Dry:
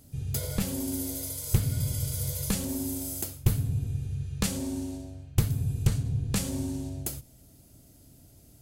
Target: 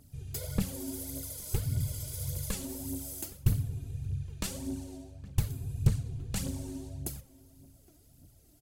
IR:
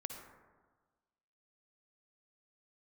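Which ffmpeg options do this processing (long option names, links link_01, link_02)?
-filter_complex "[0:a]asplit=2[link_01][link_02];[link_02]adelay=816.3,volume=-20dB,highshelf=frequency=4000:gain=-18.4[link_03];[link_01][link_03]amix=inputs=2:normalize=0,aphaser=in_gain=1:out_gain=1:delay=3.4:decay=0.57:speed=1.7:type=triangular,volume=-7.5dB"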